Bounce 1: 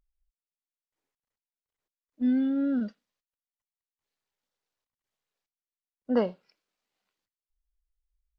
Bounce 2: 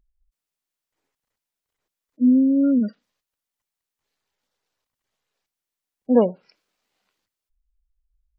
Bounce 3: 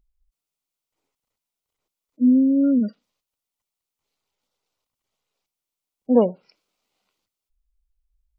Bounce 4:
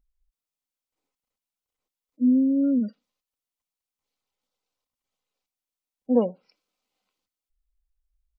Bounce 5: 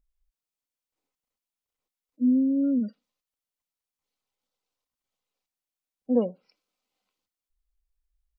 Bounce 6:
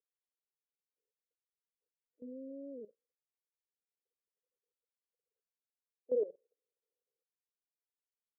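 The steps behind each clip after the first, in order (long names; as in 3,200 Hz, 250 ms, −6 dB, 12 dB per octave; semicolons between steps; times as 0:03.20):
gate on every frequency bin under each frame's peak −25 dB strong; level +9 dB
parametric band 1,700 Hz −11 dB 0.31 octaves
comb filter 3.9 ms, depth 31%; level −6 dB
dynamic equaliser 900 Hz, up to −7 dB, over −44 dBFS, Q 2.3; level −2 dB
flat-topped band-pass 450 Hz, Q 3.9; output level in coarse steps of 17 dB; level +5 dB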